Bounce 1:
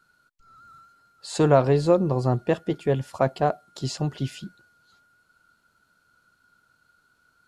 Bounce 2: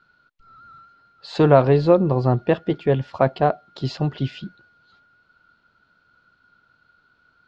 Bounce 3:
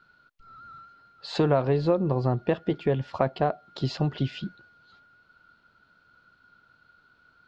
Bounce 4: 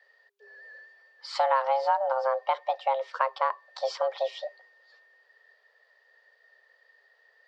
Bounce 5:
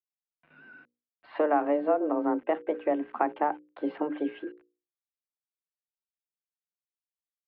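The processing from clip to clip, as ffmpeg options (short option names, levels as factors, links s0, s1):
-af "lowpass=f=4300:w=0.5412,lowpass=f=4300:w=1.3066,volume=1.58"
-af "acompressor=threshold=0.0708:ratio=2.5"
-af "afreqshift=400,volume=0.794"
-af "aeval=exprs='val(0)*gte(abs(val(0)),0.00422)':c=same,highpass=f=370:t=q:w=0.5412,highpass=f=370:t=q:w=1.307,lowpass=f=2700:t=q:w=0.5176,lowpass=f=2700:t=q:w=0.7071,lowpass=f=2700:t=q:w=1.932,afreqshift=-250,bandreject=f=60:t=h:w=6,bandreject=f=120:t=h:w=6,bandreject=f=180:t=h:w=6,bandreject=f=240:t=h:w=6,bandreject=f=300:t=h:w=6,bandreject=f=360:t=h:w=6,bandreject=f=420:t=h:w=6,bandreject=f=480:t=h:w=6,bandreject=f=540:t=h:w=6"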